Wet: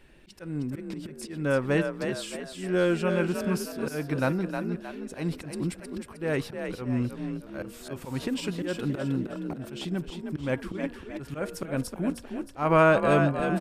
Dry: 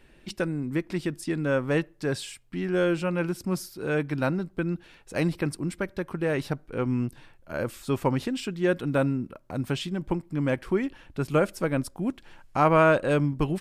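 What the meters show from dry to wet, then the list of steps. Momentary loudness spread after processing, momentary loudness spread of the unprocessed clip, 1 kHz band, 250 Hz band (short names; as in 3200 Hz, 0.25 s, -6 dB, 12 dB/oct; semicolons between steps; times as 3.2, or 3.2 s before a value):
14 LU, 9 LU, -1.5 dB, -1.5 dB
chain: de-hum 235.2 Hz, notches 7; auto swell 0.187 s; frequency-shifting echo 0.312 s, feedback 42%, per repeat +41 Hz, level -6.5 dB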